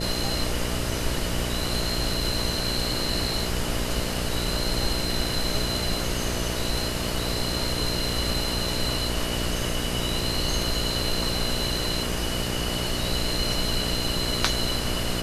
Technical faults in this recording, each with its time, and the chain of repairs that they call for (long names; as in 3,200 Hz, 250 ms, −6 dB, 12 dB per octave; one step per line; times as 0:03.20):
mains buzz 60 Hz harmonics 11 −31 dBFS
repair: hum removal 60 Hz, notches 11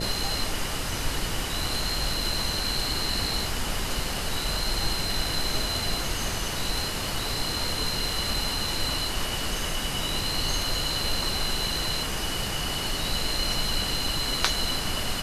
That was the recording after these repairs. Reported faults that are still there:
none of them is left